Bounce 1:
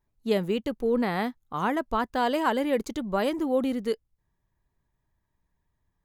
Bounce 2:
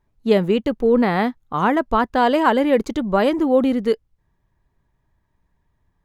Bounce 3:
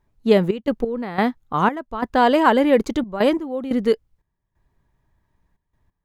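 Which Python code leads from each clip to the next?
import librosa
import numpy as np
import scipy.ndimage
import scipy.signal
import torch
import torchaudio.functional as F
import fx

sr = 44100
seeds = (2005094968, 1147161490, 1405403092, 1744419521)

y1 = fx.high_shelf(x, sr, hz=5300.0, db=-11.5)
y1 = F.gain(torch.from_numpy(y1), 9.0).numpy()
y2 = fx.step_gate(y1, sr, bpm=89, pattern='xxx.x..xxx..xxx', floor_db=-12.0, edge_ms=4.5)
y2 = F.gain(torch.from_numpy(y2), 1.0).numpy()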